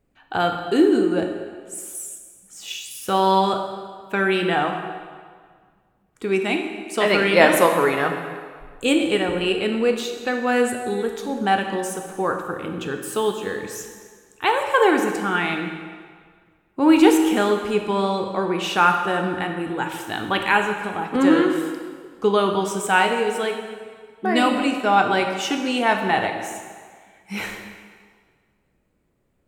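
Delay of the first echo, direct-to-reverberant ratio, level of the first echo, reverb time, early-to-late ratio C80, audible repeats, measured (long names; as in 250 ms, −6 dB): no echo audible, 4.0 dB, no echo audible, 1.8 s, 7.0 dB, no echo audible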